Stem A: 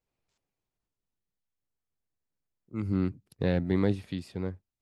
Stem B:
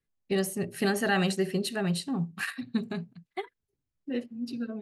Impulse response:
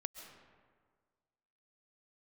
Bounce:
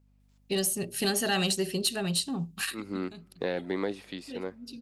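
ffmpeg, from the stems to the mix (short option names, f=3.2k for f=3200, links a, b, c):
-filter_complex "[0:a]highpass=350,acompressor=threshold=-28dB:ratio=6,aeval=exprs='val(0)+0.000708*(sin(2*PI*50*n/s)+sin(2*PI*2*50*n/s)/2+sin(2*PI*3*50*n/s)/3+sin(2*PI*4*50*n/s)/4+sin(2*PI*5*50*n/s)/5)':c=same,volume=3dB,asplit=3[a][b][c];[b]volume=-21.5dB[d];[1:a]highshelf=f=3.4k:g=-9,aexciter=amount=5.3:drive=4.6:freq=2.8k,asoftclip=type=tanh:threshold=-14.5dB,adelay=200,volume=-0.5dB[e];[c]apad=whole_len=221078[f];[e][f]sidechaincompress=threshold=-48dB:ratio=3:attack=23:release=390[g];[2:a]atrim=start_sample=2205[h];[d][h]afir=irnorm=-1:irlink=0[i];[a][g][i]amix=inputs=3:normalize=0,lowshelf=f=190:g=-4"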